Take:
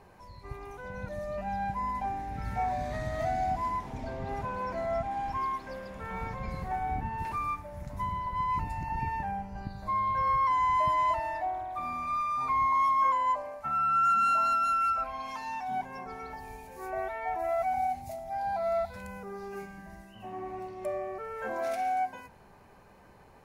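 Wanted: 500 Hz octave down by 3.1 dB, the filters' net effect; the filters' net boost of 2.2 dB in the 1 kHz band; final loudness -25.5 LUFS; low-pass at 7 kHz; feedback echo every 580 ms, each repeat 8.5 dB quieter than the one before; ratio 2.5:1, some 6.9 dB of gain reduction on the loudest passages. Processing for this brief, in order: low-pass 7 kHz; peaking EQ 500 Hz -7.5 dB; peaking EQ 1 kHz +4.5 dB; compression 2.5:1, threshold -31 dBFS; feedback delay 580 ms, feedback 38%, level -8.5 dB; trim +7.5 dB

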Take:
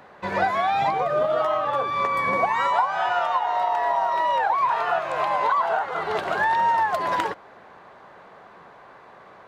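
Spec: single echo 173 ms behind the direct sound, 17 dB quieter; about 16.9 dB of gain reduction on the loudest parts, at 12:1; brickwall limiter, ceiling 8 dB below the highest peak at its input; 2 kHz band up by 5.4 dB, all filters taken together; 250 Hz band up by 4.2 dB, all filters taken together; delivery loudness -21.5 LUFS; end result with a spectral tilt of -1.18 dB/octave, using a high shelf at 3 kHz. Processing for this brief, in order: peaking EQ 250 Hz +6 dB; peaking EQ 2 kHz +4.5 dB; treble shelf 3 kHz +6.5 dB; compression 12:1, threshold -33 dBFS; peak limiter -28.5 dBFS; delay 173 ms -17 dB; trim +16 dB

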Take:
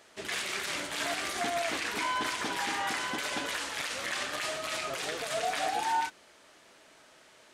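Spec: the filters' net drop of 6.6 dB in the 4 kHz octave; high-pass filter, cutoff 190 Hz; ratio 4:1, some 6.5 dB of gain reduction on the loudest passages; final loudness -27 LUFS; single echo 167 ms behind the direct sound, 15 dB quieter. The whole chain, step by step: high-pass 190 Hz; peaking EQ 4 kHz -9 dB; compression 4:1, threshold -35 dBFS; delay 167 ms -15 dB; trim +10.5 dB

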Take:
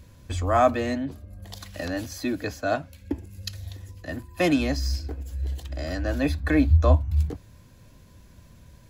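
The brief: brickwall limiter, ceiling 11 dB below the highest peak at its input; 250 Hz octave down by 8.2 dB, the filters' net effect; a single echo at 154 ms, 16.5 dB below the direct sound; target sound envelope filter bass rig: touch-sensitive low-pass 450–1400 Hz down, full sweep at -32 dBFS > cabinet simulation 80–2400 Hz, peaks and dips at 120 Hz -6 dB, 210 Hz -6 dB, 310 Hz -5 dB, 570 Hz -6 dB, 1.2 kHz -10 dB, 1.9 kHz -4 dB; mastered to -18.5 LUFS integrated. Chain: peaking EQ 250 Hz -4.5 dB; peak limiter -18 dBFS; delay 154 ms -16.5 dB; touch-sensitive low-pass 450–1400 Hz down, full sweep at -32 dBFS; cabinet simulation 80–2400 Hz, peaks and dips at 120 Hz -6 dB, 210 Hz -6 dB, 310 Hz -5 dB, 570 Hz -6 dB, 1.2 kHz -10 dB, 1.9 kHz -4 dB; trim +13.5 dB

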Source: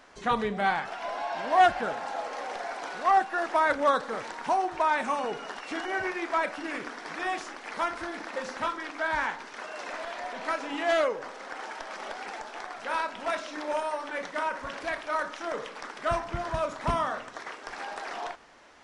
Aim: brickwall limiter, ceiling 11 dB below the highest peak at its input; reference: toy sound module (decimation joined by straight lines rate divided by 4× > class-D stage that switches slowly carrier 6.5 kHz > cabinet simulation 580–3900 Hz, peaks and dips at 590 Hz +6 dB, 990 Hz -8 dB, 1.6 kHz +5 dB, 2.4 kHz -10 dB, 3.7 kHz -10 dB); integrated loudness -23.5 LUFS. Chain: peak limiter -22.5 dBFS; decimation joined by straight lines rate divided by 4×; class-D stage that switches slowly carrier 6.5 kHz; cabinet simulation 580–3900 Hz, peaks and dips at 590 Hz +6 dB, 990 Hz -8 dB, 1.6 kHz +5 dB, 2.4 kHz -10 dB, 3.7 kHz -10 dB; trim +12 dB

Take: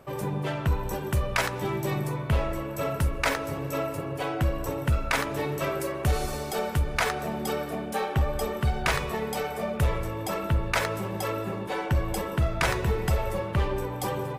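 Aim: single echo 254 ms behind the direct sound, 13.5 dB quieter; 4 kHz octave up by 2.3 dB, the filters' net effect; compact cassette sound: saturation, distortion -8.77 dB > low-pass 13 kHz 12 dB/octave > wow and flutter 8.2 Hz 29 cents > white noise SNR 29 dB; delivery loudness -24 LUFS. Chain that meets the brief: peaking EQ 4 kHz +3 dB; delay 254 ms -13.5 dB; saturation -27.5 dBFS; low-pass 13 kHz 12 dB/octave; wow and flutter 8.2 Hz 29 cents; white noise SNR 29 dB; trim +9 dB

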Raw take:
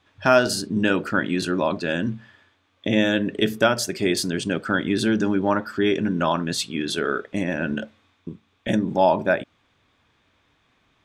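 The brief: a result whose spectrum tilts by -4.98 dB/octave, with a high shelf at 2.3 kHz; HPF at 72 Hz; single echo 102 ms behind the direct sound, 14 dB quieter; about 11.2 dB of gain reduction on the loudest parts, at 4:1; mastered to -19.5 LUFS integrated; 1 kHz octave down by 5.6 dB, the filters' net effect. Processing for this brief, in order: high-pass 72 Hz; peaking EQ 1 kHz -7 dB; treble shelf 2.3 kHz -3.5 dB; compression 4:1, threshold -29 dBFS; delay 102 ms -14 dB; trim +13.5 dB

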